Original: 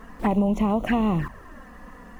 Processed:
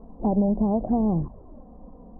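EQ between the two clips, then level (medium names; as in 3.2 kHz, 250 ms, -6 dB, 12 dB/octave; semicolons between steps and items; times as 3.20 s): steep low-pass 810 Hz 36 dB/octave; 0.0 dB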